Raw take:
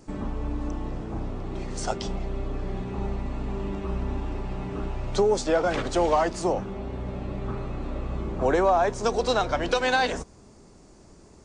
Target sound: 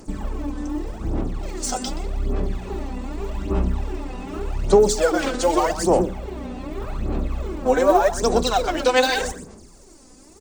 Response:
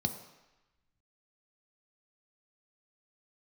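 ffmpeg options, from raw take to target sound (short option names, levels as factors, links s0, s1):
-filter_complex "[0:a]equalizer=f=130:t=o:w=0.42:g=-6.5,atempo=1.1,asplit=2[s0][s1];[1:a]atrim=start_sample=2205,asetrate=83790,aresample=44100,adelay=125[s2];[s1][s2]afir=irnorm=-1:irlink=0,volume=0.251[s3];[s0][s3]amix=inputs=2:normalize=0,aphaser=in_gain=1:out_gain=1:delay=4:decay=0.66:speed=0.84:type=sinusoidal,aemphasis=mode=production:type=50fm"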